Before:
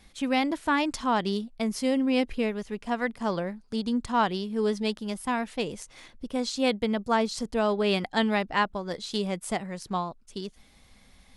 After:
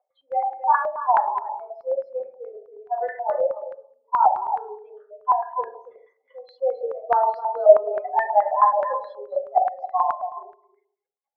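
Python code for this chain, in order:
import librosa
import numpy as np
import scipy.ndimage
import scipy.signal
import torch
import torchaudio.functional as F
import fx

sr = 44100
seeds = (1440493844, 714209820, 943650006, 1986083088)

p1 = fx.spec_expand(x, sr, power=3.8)
p2 = scipy.signal.sosfilt(scipy.signal.butter(12, 490.0, 'highpass', fs=sr, output='sos'), p1)
p3 = fx.level_steps(p2, sr, step_db=17)
p4 = p2 + (p3 * 10.0 ** (1.0 / 20.0))
p5 = fx.air_absorb(p4, sr, metres=200.0)
p6 = p5 + fx.echo_single(p5, sr, ms=277, db=-12.0, dry=0)
p7 = fx.rev_fdn(p6, sr, rt60_s=0.61, lf_ratio=0.85, hf_ratio=0.3, size_ms=24.0, drr_db=-4.5)
p8 = fx.filter_held_lowpass(p7, sr, hz=9.4, low_hz=680.0, high_hz=1800.0)
y = p8 * 10.0 ** (-4.5 / 20.0)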